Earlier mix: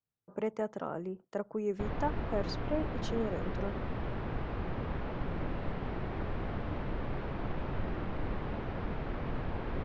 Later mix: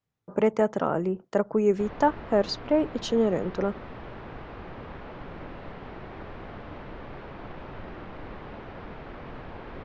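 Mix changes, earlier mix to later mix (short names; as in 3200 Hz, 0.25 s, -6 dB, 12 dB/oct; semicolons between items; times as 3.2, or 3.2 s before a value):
speech +11.5 dB; background: add low shelf 240 Hz -8 dB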